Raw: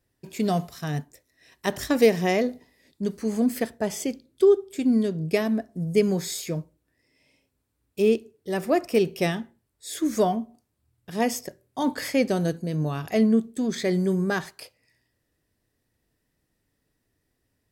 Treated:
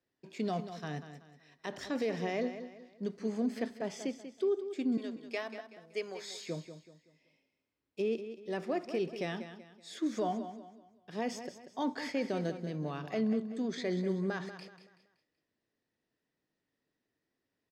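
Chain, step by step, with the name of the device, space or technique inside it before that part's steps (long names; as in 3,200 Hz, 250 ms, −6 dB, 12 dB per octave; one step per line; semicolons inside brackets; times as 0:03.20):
0:04.97–0:06.41: high-pass filter 660 Hz 12 dB per octave
DJ mixer with the lows and highs turned down (three-way crossover with the lows and the highs turned down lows −17 dB, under 160 Hz, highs −24 dB, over 6,100 Hz; brickwall limiter −17 dBFS, peak gain reduction 10.5 dB)
repeating echo 189 ms, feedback 36%, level −11 dB
level −7.5 dB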